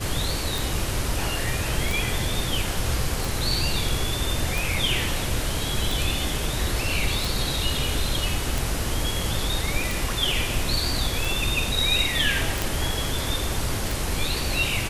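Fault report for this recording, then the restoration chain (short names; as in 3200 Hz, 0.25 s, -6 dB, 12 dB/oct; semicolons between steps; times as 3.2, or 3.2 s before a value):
tick 45 rpm
12.62 pop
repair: de-click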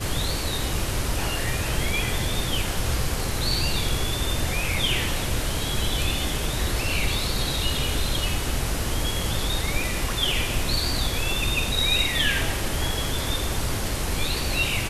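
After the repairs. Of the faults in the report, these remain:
none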